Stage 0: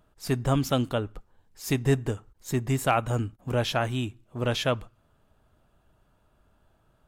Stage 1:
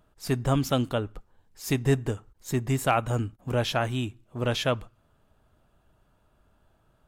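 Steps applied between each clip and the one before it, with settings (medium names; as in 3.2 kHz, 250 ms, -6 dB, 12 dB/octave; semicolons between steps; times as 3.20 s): no audible change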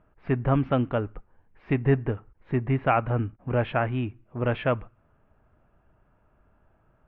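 steep low-pass 2.5 kHz 36 dB/octave; trim +1.5 dB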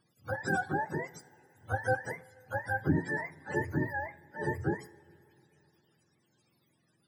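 spectrum inverted on a logarithmic axis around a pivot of 460 Hz; two-slope reverb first 0.39 s, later 3.4 s, from -17 dB, DRR 14 dB; trim -6 dB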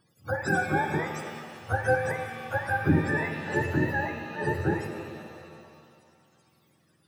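pitch-shifted reverb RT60 2.2 s, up +7 st, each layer -8 dB, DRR 5 dB; trim +4.5 dB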